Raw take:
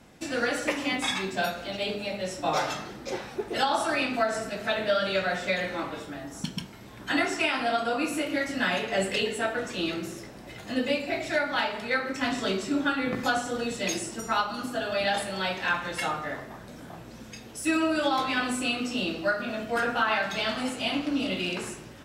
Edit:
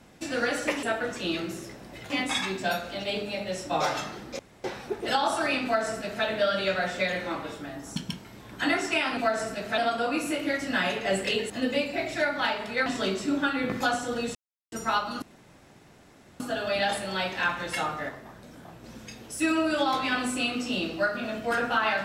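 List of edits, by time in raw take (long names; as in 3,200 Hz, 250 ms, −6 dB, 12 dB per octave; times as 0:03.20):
0:03.12: splice in room tone 0.25 s
0:04.12–0:04.73: duplicate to 0:07.65
0:09.37–0:10.64: move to 0:00.83
0:12.00–0:12.29: remove
0:13.78–0:14.15: silence
0:14.65: splice in room tone 1.18 s
0:16.34–0:17.09: clip gain −3.5 dB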